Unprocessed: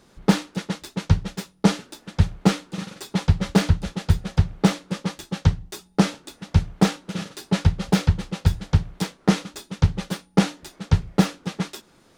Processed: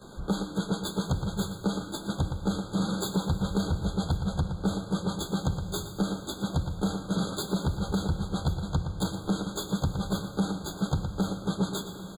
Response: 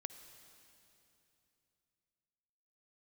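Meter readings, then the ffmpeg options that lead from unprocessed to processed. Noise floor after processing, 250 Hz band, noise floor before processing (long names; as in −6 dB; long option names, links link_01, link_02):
−42 dBFS, −5.5 dB, −57 dBFS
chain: -filter_complex "[0:a]equalizer=frequency=3600:width=2.7:gain=-2.5,acompressor=threshold=-29dB:ratio=6,asplit=2[link_01][link_02];[link_02]adelay=116.6,volume=-13dB,highshelf=frequency=4000:gain=-2.62[link_03];[link_01][link_03]amix=inputs=2:normalize=0,asoftclip=type=tanh:threshold=-28.5dB,acrossover=split=260|3000[link_04][link_05][link_06];[link_05]acompressor=threshold=-39dB:ratio=6[link_07];[link_04][link_07][link_06]amix=inputs=3:normalize=0,asplit=2[link_08][link_09];[1:a]atrim=start_sample=2205,adelay=15[link_10];[link_09][link_10]afir=irnorm=-1:irlink=0,volume=12.5dB[link_11];[link_08][link_11]amix=inputs=2:normalize=0,afftfilt=real='re*eq(mod(floor(b*sr/1024/1600),2),0)':imag='im*eq(mod(floor(b*sr/1024/1600),2),0)':win_size=1024:overlap=0.75"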